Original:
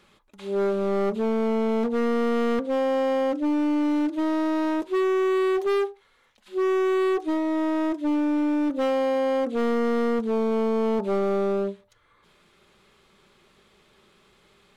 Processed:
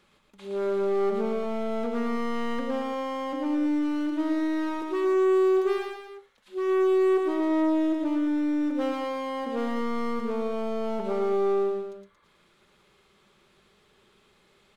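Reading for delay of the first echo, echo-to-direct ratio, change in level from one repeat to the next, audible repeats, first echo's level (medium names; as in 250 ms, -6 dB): 114 ms, -2.0 dB, -5.0 dB, 3, -3.5 dB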